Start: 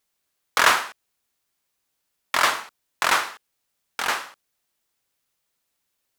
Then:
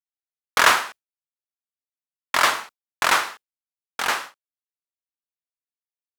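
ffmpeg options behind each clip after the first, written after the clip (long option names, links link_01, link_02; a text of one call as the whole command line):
ffmpeg -i in.wav -af "agate=range=-33dB:threshold=-33dB:ratio=3:detection=peak,volume=1.5dB" out.wav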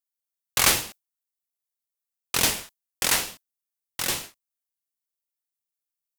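ffmpeg -i in.wav -af "crystalizer=i=8:c=0,lowshelf=frequency=680:width_type=q:width=1.5:gain=8.5,aeval=exprs='val(0)*sin(2*PI*1000*n/s+1000*0.5/2.4*sin(2*PI*2.4*n/s))':channel_layout=same,volume=-11dB" out.wav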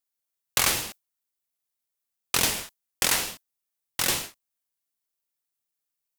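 ffmpeg -i in.wav -af "acompressor=threshold=-22dB:ratio=6,volume=3.5dB" out.wav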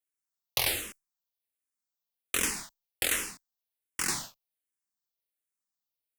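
ffmpeg -i in.wav -filter_complex "[0:a]asplit=2[link_01][link_02];[link_02]afreqshift=-1.3[link_03];[link_01][link_03]amix=inputs=2:normalize=1,volume=-2.5dB" out.wav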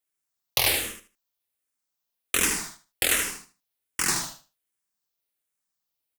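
ffmpeg -i in.wav -af "aecho=1:1:77|154|231:0.473|0.0946|0.0189,volume=5dB" out.wav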